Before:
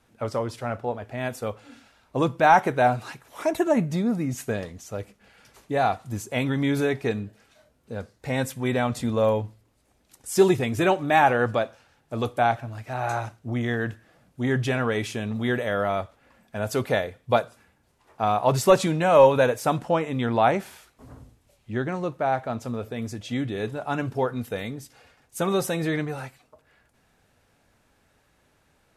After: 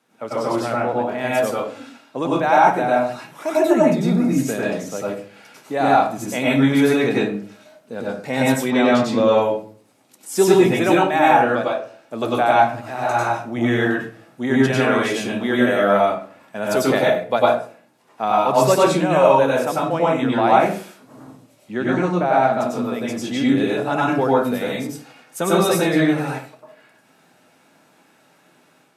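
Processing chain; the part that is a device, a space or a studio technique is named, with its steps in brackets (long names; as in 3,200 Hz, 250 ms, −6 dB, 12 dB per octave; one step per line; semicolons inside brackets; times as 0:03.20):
far laptop microphone (convolution reverb RT60 0.40 s, pre-delay 91 ms, DRR −5 dB; high-pass filter 170 Hz 24 dB per octave; automatic gain control gain up to 5 dB)
0:08.70–0:09.42: high shelf with overshoot 7,100 Hz −10 dB, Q 1.5
level −1 dB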